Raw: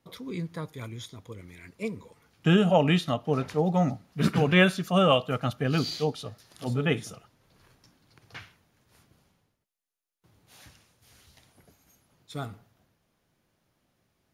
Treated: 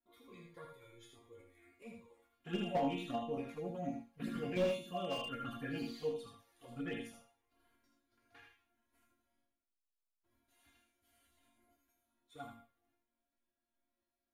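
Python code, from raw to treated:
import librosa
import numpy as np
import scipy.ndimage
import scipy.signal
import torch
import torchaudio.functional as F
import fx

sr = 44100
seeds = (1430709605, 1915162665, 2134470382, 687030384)

p1 = fx.peak_eq(x, sr, hz=5300.0, db=-10.5, octaves=0.75)
p2 = fx.level_steps(p1, sr, step_db=9)
p3 = fx.resonator_bank(p2, sr, root=58, chord='minor', decay_s=0.37)
p4 = fx.env_flanger(p3, sr, rest_ms=3.1, full_db=-44.5)
p5 = p4 + fx.echo_single(p4, sr, ms=78, db=-5.0, dry=0)
p6 = fx.slew_limit(p5, sr, full_power_hz=6.4)
y = F.gain(torch.from_numpy(p6), 10.5).numpy()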